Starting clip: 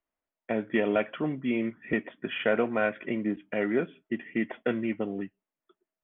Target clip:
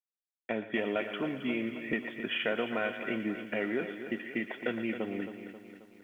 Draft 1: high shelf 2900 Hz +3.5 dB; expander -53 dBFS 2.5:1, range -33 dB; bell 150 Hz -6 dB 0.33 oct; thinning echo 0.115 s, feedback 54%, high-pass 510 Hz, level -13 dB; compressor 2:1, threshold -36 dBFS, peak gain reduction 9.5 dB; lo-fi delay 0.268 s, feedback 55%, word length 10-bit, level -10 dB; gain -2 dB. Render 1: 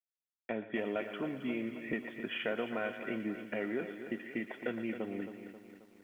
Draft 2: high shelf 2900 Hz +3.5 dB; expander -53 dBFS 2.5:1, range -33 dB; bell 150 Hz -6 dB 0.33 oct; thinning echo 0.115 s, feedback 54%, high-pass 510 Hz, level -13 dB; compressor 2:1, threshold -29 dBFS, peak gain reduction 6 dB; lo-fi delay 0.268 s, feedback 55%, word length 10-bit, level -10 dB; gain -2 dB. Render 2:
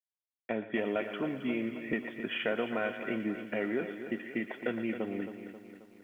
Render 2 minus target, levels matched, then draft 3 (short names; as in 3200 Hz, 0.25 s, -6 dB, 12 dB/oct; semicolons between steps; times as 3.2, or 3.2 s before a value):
4000 Hz band -3.0 dB
high shelf 2900 Hz +12 dB; expander -53 dBFS 2.5:1, range -33 dB; bell 150 Hz -6 dB 0.33 oct; thinning echo 0.115 s, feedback 54%, high-pass 510 Hz, level -13 dB; compressor 2:1, threshold -29 dBFS, peak gain reduction 6 dB; lo-fi delay 0.268 s, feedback 55%, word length 10-bit, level -10 dB; gain -2 dB